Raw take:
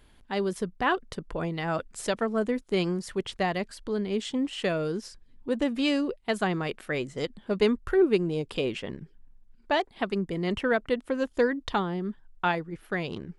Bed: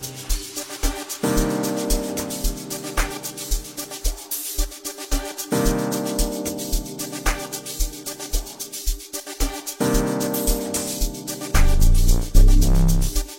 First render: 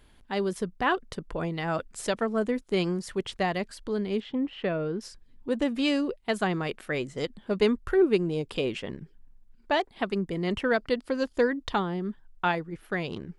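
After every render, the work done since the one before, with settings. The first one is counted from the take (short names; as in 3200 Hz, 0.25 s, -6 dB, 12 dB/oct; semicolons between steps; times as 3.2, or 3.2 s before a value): 4.2–5.01 air absorption 360 m; 10.71–11.33 bell 4700 Hz +12.5 dB 0.34 oct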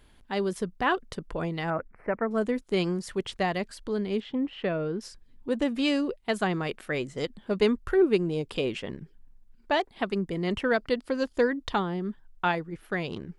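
1.7–2.31 elliptic low-pass 2200 Hz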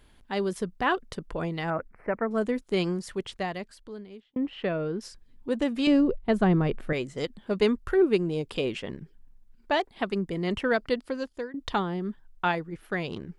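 2.89–4.36 fade out; 5.87–6.93 tilt -3.5 dB/oct; 10.93–11.54 fade out, to -19.5 dB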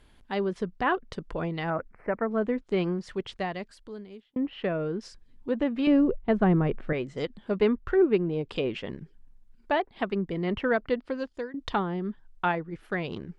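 treble ducked by the level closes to 2400 Hz, closed at -24 dBFS; high shelf 7800 Hz -4.5 dB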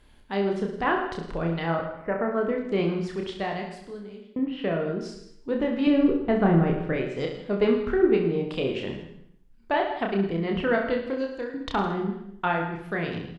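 reverse bouncing-ball echo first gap 30 ms, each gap 1.2×, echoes 5; plate-style reverb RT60 0.68 s, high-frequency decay 0.9×, pre-delay 85 ms, DRR 10.5 dB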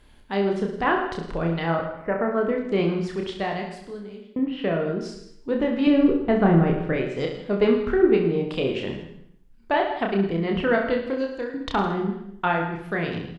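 gain +2.5 dB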